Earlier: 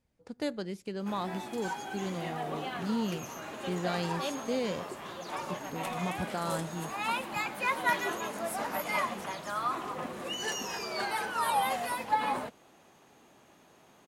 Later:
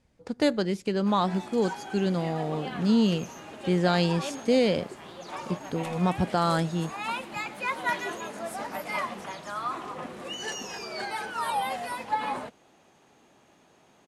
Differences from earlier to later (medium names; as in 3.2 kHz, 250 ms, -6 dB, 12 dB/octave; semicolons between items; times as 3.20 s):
speech +10.0 dB; second sound -9.0 dB; master: add low-pass 9.6 kHz 12 dB/octave